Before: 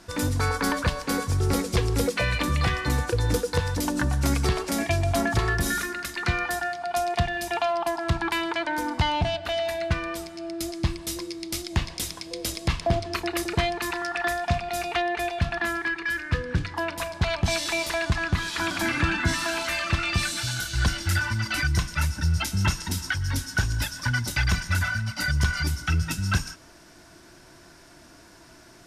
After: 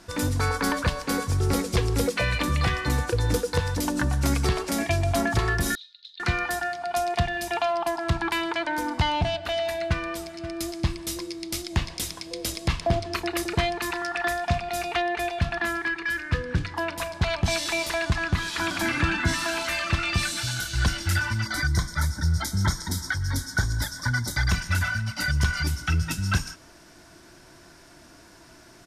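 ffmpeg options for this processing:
ffmpeg -i in.wav -filter_complex "[0:a]asettb=1/sr,asplit=3[link_01][link_02][link_03];[link_01]atrim=end=5.754[link_04];[link_02]atrim=start=5.75:end=6.2,asetpts=PTS-STARTPTS,afade=type=in:duration=0.004:curve=qsin,afade=type=out:start_time=0.446:duration=0.004:curve=qsin,asuperpass=centerf=3800:order=4:qfactor=5.1[link_05];[link_03]atrim=start=6.196[link_06];[link_04][link_05]acrossfade=duration=0.004:curve1=hsin:curve2=qsin[link_07];[link_07][link_06]acrossfade=duration=0.004:curve1=qsin:curve2=hsin,asplit=2[link_08][link_09];[link_09]afade=type=in:start_time=9.73:duration=0.01,afade=type=out:start_time=10.54:duration=0.01,aecho=0:1:530|1060:0.199526|0.0299289[link_10];[link_08][link_10]amix=inputs=2:normalize=0,asettb=1/sr,asplit=3[link_11][link_12][link_13];[link_11]atrim=end=21.464[link_14];[link_12]atrim=start=21.46:end=24.51,asetpts=PTS-STARTPTS,afade=type=in:duration=0.004:curve=qsin,afade=type=out:start_time=3.046:duration=0.004:curve=qsin,asuperstop=centerf=2700:order=4:qfactor=2.2[link_15];[link_13]atrim=start=24.506[link_16];[link_14][link_15]acrossfade=duration=0.004:curve1=hsin:curve2=qsin[link_17];[link_17][link_16]acrossfade=duration=0.004:curve1=qsin:curve2=hsin" out.wav

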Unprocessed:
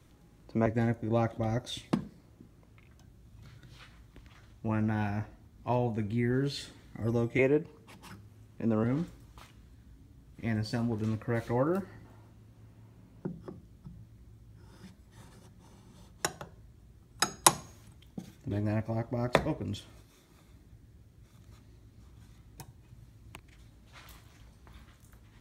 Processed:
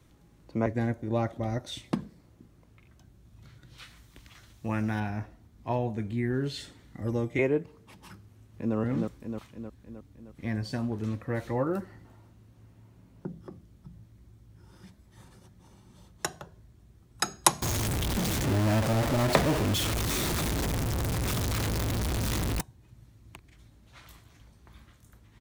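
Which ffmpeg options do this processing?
ffmpeg -i in.wav -filter_complex "[0:a]asettb=1/sr,asplit=3[link_01][link_02][link_03];[link_01]atrim=end=3.784[link_04];[link_02]atrim=start=3.78:end=5,asetpts=PTS-STARTPTS,afade=type=in:duration=0.004:curve=qsin,afade=type=out:start_time=1.216:duration=0.004:curve=qsin,highshelf=frequency=2100:gain=10.5[link_05];[link_03]atrim=start=4.996[link_06];[link_04][link_05]acrossfade=duration=0.004:curve1=hsin:curve2=qsin[link_07];[link_07][link_06]acrossfade=duration=0.004:curve1=qsin:curve2=hsin,asplit=2[link_08][link_09];[link_09]afade=type=in:start_time=8.22:duration=0.01,afade=type=out:start_time=8.76:duration=0.01,aecho=0:1:310|620|930|1240|1550|1860|2170|2480|2790:0.749894|0.449937|0.269962|0.161977|0.0971863|0.0583118|0.0349871|0.0209922|0.0125953[link_10];[link_08][link_10]amix=inputs=2:normalize=0,asettb=1/sr,asplit=3[link_11][link_12][link_13];[link_11]atrim=end=17.624[link_14];[link_12]atrim=start=17.62:end=22.61,asetpts=PTS-STARTPTS,afade=type=in:duration=0.004:curve=qsin,afade=type=out:start_time=4.986:duration=0.004:curve=qsin,aeval=exprs='val(0)+0.5*0.0708*sgn(val(0))':channel_layout=same[link_15];[link_13]atrim=start=22.606[link_16];[link_14][link_15]acrossfade=duration=0.004:curve1=hsin:curve2=qsin[link_17];[link_17][link_16]acrossfade=duration=0.004:curve1=qsin:curve2=hsin" out.wav

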